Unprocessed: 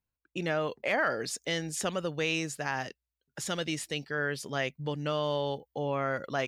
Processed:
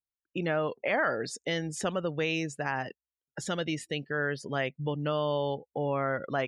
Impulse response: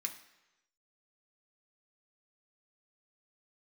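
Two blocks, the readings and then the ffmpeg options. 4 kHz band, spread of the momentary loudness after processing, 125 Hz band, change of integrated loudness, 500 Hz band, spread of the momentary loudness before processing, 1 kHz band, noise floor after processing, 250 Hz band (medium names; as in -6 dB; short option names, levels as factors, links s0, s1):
-2.0 dB, 6 LU, +2.0 dB, +0.5 dB, +1.5 dB, 5 LU, +1.0 dB, under -85 dBFS, +2.0 dB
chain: -filter_complex "[0:a]afftdn=nr=23:nf=-45,highshelf=f=3900:g=-8.5,asplit=2[s0][s1];[s1]acompressor=threshold=0.0112:ratio=6,volume=0.708[s2];[s0][s2]amix=inputs=2:normalize=0"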